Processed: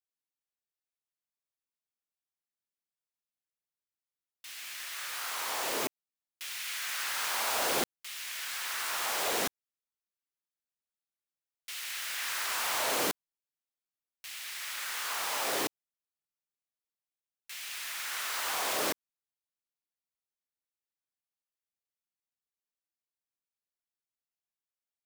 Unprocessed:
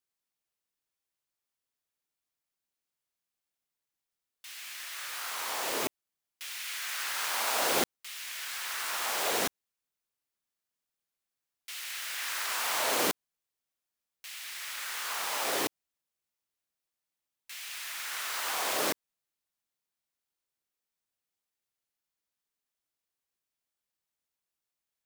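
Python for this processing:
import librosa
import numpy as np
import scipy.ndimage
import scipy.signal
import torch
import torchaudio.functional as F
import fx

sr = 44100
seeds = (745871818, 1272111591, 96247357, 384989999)

y = fx.leveller(x, sr, passes=2)
y = F.gain(torch.from_numpy(y), -7.0).numpy()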